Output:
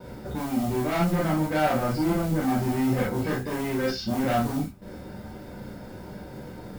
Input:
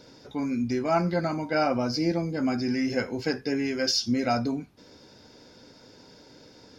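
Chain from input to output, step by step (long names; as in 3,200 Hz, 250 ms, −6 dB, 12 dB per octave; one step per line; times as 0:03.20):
low-pass filter 1,800 Hz 12 dB per octave
noise gate with hold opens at −46 dBFS
low-shelf EQ 130 Hz +10 dB
in parallel at −0.5 dB: downward compressor, threshold −39 dBFS, peak gain reduction 19 dB
on the sum: soft clipping −26 dBFS, distortion −9 dB
noise that follows the level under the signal 21 dB
reverb whose tail is shaped and stops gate 80 ms flat, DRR −4.5 dB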